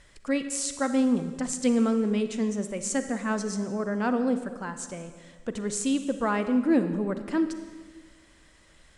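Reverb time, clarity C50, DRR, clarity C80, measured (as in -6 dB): 1.5 s, 9.5 dB, 9.0 dB, 11.0 dB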